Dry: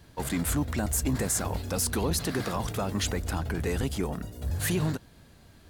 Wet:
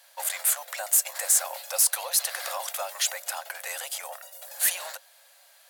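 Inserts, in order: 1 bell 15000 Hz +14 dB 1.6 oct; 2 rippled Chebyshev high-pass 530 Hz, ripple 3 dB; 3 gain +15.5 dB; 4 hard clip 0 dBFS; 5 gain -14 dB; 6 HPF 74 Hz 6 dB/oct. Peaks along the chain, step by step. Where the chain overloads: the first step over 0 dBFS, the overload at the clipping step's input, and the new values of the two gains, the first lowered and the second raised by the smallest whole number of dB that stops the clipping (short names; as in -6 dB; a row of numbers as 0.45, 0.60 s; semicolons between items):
-6.0, -8.5, +7.0, 0.0, -14.0, -14.0 dBFS; step 3, 7.0 dB; step 3 +8.5 dB, step 5 -7 dB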